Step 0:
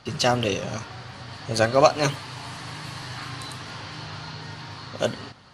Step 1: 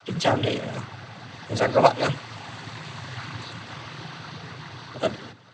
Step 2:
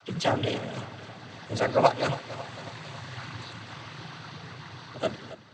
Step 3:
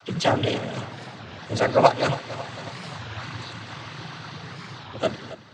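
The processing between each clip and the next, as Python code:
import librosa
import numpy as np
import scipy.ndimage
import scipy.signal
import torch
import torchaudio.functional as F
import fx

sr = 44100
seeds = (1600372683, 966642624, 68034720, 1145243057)

y1 = fx.peak_eq(x, sr, hz=5700.0, db=-12.0, octaves=0.44)
y1 = fx.noise_vocoder(y1, sr, seeds[0], bands=16)
y2 = fx.echo_feedback(y1, sr, ms=274, feedback_pct=56, wet_db=-15.5)
y2 = y2 * 10.0 ** (-4.0 / 20.0)
y3 = fx.record_warp(y2, sr, rpm=33.33, depth_cents=250.0)
y3 = y3 * 10.0 ** (4.5 / 20.0)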